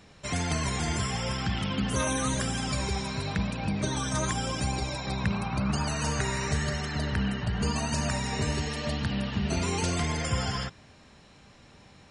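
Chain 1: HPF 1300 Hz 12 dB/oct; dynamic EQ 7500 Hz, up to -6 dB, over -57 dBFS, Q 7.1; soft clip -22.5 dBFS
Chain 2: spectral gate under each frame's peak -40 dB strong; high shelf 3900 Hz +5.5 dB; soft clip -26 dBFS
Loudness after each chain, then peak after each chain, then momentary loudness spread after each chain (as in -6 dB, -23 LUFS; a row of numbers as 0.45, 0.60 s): -35.5, -31.5 LUFS; -23.0, -26.0 dBFS; 5, 3 LU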